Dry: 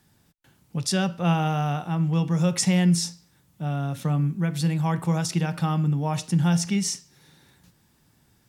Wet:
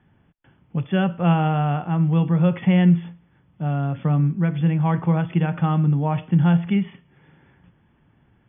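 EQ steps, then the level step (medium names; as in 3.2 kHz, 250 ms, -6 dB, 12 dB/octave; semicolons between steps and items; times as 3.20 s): brick-wall FIR low-pass 3.5 kHz; distance through air 300 m; +4.5 dB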